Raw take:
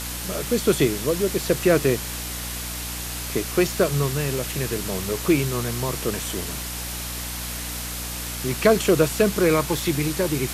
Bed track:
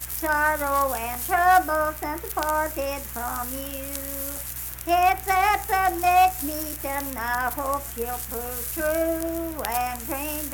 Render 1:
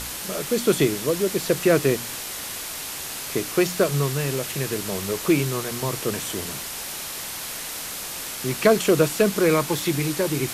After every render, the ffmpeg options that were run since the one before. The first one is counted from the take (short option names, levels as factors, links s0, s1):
-af "bandreject=f=60:t=h:w=4,bandreject=f=120:t=h:w=4,bandreject=f=180:t=h:w=4,bandreject=f=240:t=h:w=4,bandreject=f=300:t=h:w=4"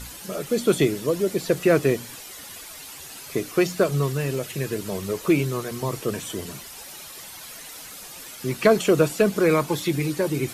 -af "afftdn=nr=11:nf=-33"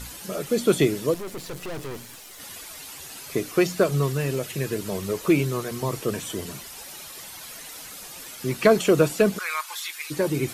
-filter_complex "[0:a]asettb=1/sr,asplit=3[s0][s1][s2];[s0]atrim=end=1.144[s3];[s1]atrim=start=1.14:end=2.4,asetpts=PTS-STARTPTS,afade=t=in:d=0.004:c=qsin,afade=t=out:st=1.256:d=0.004:c=qsin,aeval=exprs='(tanh(39.8*val(0)+0.75)-tanh(0.75))/39.8':c=same[s4];[s2]atrim=start=2.396[s5];[s3][s4]acrossfade=d=0.004:c1=hsin:c2=qsin[s6];[s6][s5]acrossfade=d=0.004:c1=qsin:c2=hsin,asplit=3[s7][s8][s9];[s7]afade=t=out:st=9.37:d=0.02[s10];[s8]highpass=f=1100:w=0.5412,highpass=f=1100:w=1.3066,afade=t=in:st=9.37:d=0.02,afade=t=out:st=10.1:d=0.02[s11];[s9]afade=t=in:st=10.1:d=0.02[s12];[s10][s11][s12]amix=inputs=3:normalize=0"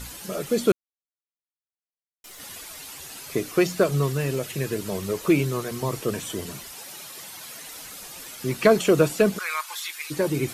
-filter_complex "[0:a]asettb=1/sr,asplit=3[s0][s1][s2];[s0]atrim=end=6.724[s3];[s1]atrim=start=6.72:end=7.67,asetpts=PTS-STARTPTS,afade=t=in:d=0.004:c=qsin,afade=t=out:st=0.946:d=0.004:c=qsin,highpass=f=100:w=0.5412,highpass=f=100:w=1.3066[s4];[s2]atrim=start=7.666[s5];[s3][s4]acrossfade=d=0.004:c1=hsin:c2=qsin[s6];[s6][s5]acrossfade=d=0.004:c1=qsin:c2=hsin,asplit=3[s7][s8][s9];[s7]atrim=end=0.72,asetpts=PTS-STARTPTS,afade=t=out:st=0.716:d=0.004:c=hsin[s10];[s8]atrim=start=0.72:end=2.24,asetpts=PTS-STARTPTS,volume=0[s11];[s9]atrim=start=2.24,asetpts=PTS-STARTPTS,afade=t=in:d=0.004:c=hsin[s12];[s10][s11][s12]concat=n=3:v=0:a=1"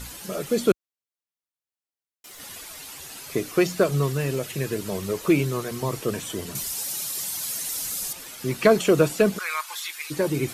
-filter_complex "[0:a]asettb=1/sr,asplit=3[s0][s1][s2];[s0]atrim=end=0.684[s3];[s1]atrim=start=0.68:end=2.35,asetpts=PTS-STARTPTS,afade=t=in:d=0.004:c=qsin,afade=t=out:st=1.666:d=0.004:c=qsin,highpass=56[s4];[s2]atrim=start=2.346[s5];[s3][s4]acrossfade=d=0.004:c1=hsin:c2=qsin[s6];[s6][s5]acrossfade=d=0.004:c1=qsin:c2=hsin,asettb=1/sr,asplit=3[s7][s8][s9];[s7]atrim=end=6.554[s10];[s8]atrim=start=6.55:end=8.13,asetpts=PTS-STARTPTS,afade=t=in:d=0.004:c=qsin,afade=t=out:st=1.576:d=0.004:c=qsin,bass=f=250:g=6,treble=f=4000:g=12[s11];[s9]atrim=start=8.126[s12];[s10][s11]acrossfade=d=0.004:c1=hsin:c2=qsin[s13];[s13][s12]acrossfade=d=0.004:c1=qsin:c2=hsin"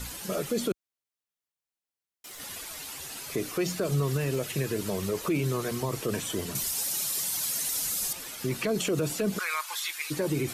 -filter_complex "[0:a]acrossover=split=470|3000[s0][s1][s2];[s1]acompressor=threshold=0.0562:ratio=6[s3];[s0][s3][s2]amix=inputs=3:normalize=0,alimiter=limit=0.106:level=0:latency=1:release=55"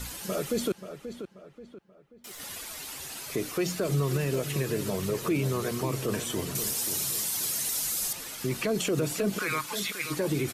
-filter_complex "[0:a]asplit=2[s0][s1];[s1]adelay=533,lowpass=f=2800:p=1,volume=0.316,asplit=2[s2][s3];[s3]adelay=533,lowpass=f=2800:p=1,volume=0.4,asplit=2[s4][s5];[s5]adelay=533,lowpass=f=2800:p=1,volume=0.4,asplit=2[s6][s7];[s7]adelay=533,lowpass=f=2800:p=1,volume=0.4[s8];[s0][s2][s4][s6][s8]amix=inputs=5:normalize=0"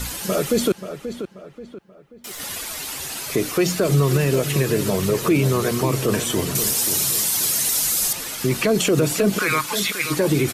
-af "volume=2.99"